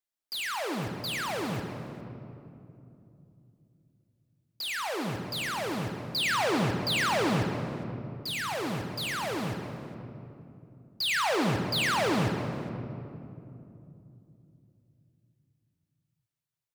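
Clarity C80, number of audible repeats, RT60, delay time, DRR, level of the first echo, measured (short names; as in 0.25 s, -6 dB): 6.0 dB, 1, 2.9 s, 0.409 s, 4.0 dB, -17.5 dB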